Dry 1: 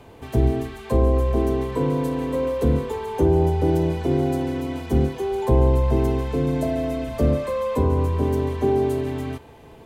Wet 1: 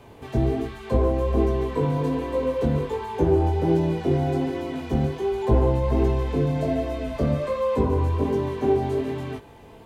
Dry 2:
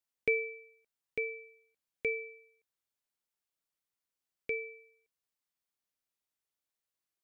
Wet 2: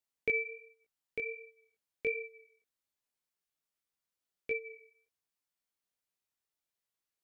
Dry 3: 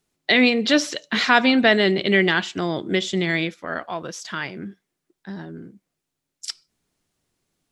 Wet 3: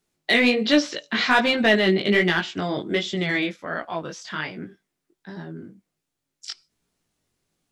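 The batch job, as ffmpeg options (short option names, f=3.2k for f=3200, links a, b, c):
-filter_complex "[0:a]acrossover=split=6400[a][b];[b]acompressor=threshold=-58dB:ratio=4:attack=1:release=60[c];[a][c]amix=inputs=2:normalize=0,asplit=2[d][e];[e]aeval=exprs='0.237*(abs(mod(val(0)/0.237+3,4)-2)-1)':c=same,volume=-11dB[f];[d][f]amix=inputs=2:normalize=0,flanger=delay=17:depth=4.6:speed=1.3"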